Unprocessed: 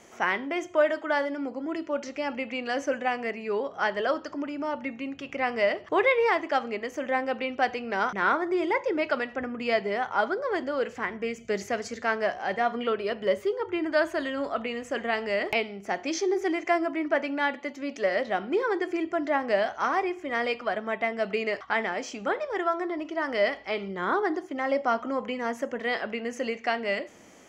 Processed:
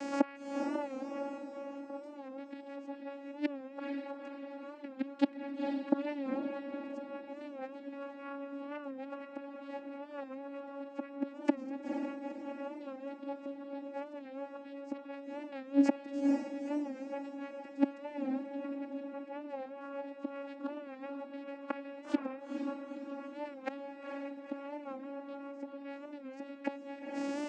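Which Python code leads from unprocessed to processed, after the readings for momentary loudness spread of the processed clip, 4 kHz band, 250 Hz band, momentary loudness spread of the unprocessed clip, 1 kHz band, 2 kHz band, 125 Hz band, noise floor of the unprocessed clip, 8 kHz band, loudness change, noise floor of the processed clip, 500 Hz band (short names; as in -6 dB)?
11 LU, under -15 dB, -3.5 dB, 7 LU, -16.0 dB, -21.5 dB, n/a, -48 dBFS, under -15 dB, -11.5 dB, -50 dBFS, -14.0 dB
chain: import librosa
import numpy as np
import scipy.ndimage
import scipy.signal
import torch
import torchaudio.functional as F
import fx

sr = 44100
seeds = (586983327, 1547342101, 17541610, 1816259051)

y = fx.gate_flip(x, sr, shuts_db=-28.0, range_db=-35)
y = fx.vocoder(y, sr, bands=8, carrier='saw', carrier_hz=279.0)
y = fx.echo_diffused(y, sr, ms=469, feedback_pct=50, wet_db=-4.0)
y = fx.record_warp(y, sr, rpm=45.0, depth_cents=100.0)
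y = y * librosa.db_to_amplitude(18.0)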